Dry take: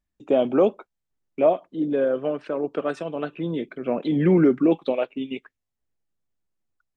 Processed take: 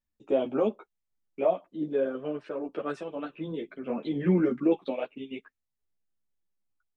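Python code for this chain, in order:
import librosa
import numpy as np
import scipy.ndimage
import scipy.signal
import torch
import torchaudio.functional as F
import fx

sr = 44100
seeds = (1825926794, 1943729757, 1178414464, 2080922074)

y = fx.ensemble(x, sr)
y = y * 10.0 ** (-3.5 / 20.0)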